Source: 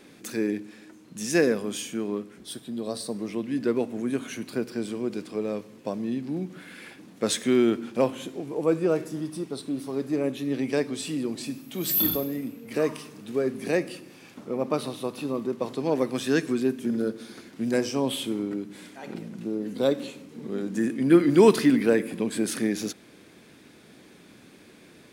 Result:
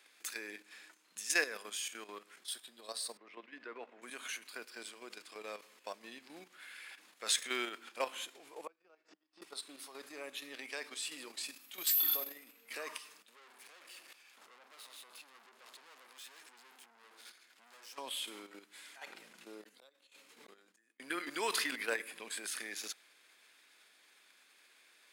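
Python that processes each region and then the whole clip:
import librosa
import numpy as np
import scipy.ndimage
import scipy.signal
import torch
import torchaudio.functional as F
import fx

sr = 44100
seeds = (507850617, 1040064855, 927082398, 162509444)

y = fx.chain(x, sr, fx.lowpass(hz=2200.0, slope=12),
    fx.peak_eq(hz=120.0, db=-5.5, octaves=1.2),
    fx.band_widen(depth_pct=40), at=(3.17, 4.02))
y = fx.chain(y, sr, fx.gate_flip(shuts_db=-24.0, range_db=-32),
    fx.cabinet(low_hz=190.0, low_slope=24, high_hz=5200.0, hz=(190.0, 300.0, 760.0, 3600.0), db=(9, 4, 5, -4)),
    fx.band_squash(depth_pct=40), at=(8.67, 9.42))
y = fx.chain(y, sr, fx.transient(attack_db=0, sustain_db=8),
    fx.tremolo_shape(shape='saw_up', hz=2.2, depth_pct=65),
    fx.tube_stage(drive_db=41.0, bias=0.65), at=(13.22, 17.98))
y = fx.chain(y, sr, fx.gate_flip(shuts_db=-25.0, range_db=-42),
    fx.sustainer(db_per_s=51.0), at=(19.63, 21.0))
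y = fx.level_steps(y, sr, step_db=10)
y = scipy.signal.sosfilt(scipy.signal.butter(2, 1200.0, 'highpass', fs=sr, output='sos'), y)
y = fx.notch(y, sr, hz=5800.0, q=18.0)
y = y * librosa.db_to_amplitude(1.0)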